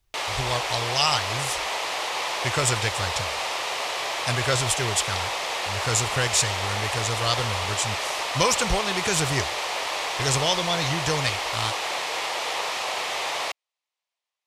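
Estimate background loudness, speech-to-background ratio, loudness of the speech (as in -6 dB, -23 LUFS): -27.0 LUFS, 1.0 dB, -26.0 LUFS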